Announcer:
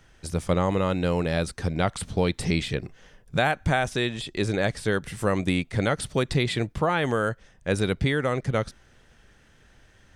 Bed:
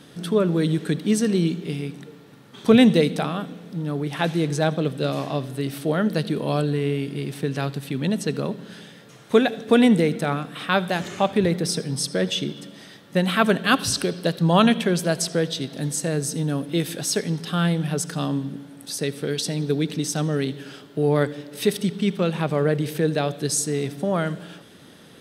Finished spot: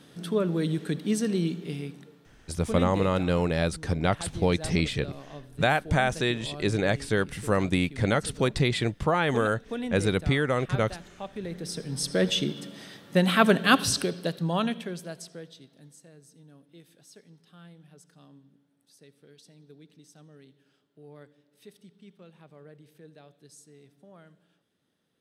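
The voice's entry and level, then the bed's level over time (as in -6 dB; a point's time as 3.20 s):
2.25 s, -0.5 dB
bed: 1.83 s -6 dB
2.60 s -17.5 dB
11.34 s -17.5 dB
12.20 s -1 dB
13.79 s -1 dB
16.14 s -29 dB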